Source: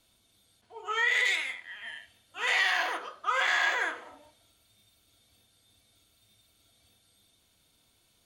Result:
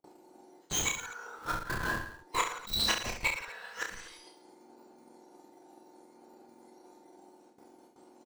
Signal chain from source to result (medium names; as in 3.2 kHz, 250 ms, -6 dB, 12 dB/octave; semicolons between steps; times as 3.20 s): spectrum inverted on a logarithmic axis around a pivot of 1.8 kHz; band-stop 1.8 kHz, Q 29; spectral selection erased 2.58–2.88 s, 220–3900 Hz; hum notches 60/120/180/240 Hz; gate with hold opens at -55 dBFS; graphic EQ 125/250/8000 Hz +5/-6/+9 dB; transient shaper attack +8 dB, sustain -6 dB; in parallel at -7 dB: Schmitt trigger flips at -41.5 dBFS; on the sum: inverted gate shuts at -21 dBFS, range -26 dB; formant shift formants -2 st; on a send: reverse bouncing-ball echo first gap 30 ms, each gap 1.25×, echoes 5; on the sum: trim +5 dB